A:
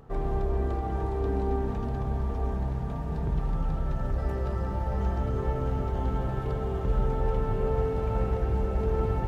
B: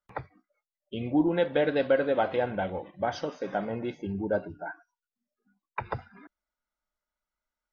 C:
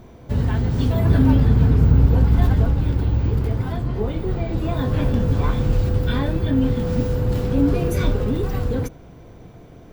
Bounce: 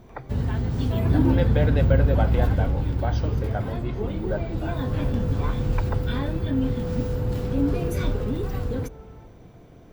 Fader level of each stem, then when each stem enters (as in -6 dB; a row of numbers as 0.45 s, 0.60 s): -18.5 dB, -1.5 dB, -5.0 dB; 0.00 s, 0.00 s, 0.00 s